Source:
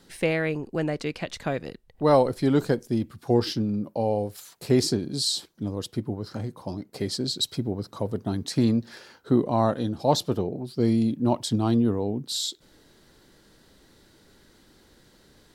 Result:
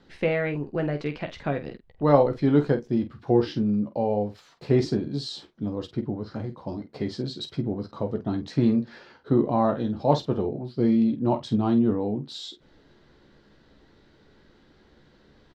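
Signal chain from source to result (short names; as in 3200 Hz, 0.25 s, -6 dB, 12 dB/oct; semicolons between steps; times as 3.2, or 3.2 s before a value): air absorption 210 m; on a send: early reflections 14 ms -7.5 dB, 48 ms -10.5 dB; on the sum: dynamic EQ 4500 Hz, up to -4 dB, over -50 dBFS, Q 2.5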